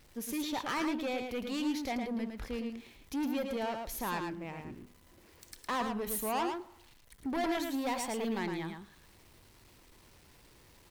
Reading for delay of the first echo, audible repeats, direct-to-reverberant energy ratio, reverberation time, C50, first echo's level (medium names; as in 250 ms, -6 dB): 110 ms, 1, no reverb, no reverb, no reverb, -5.5 dB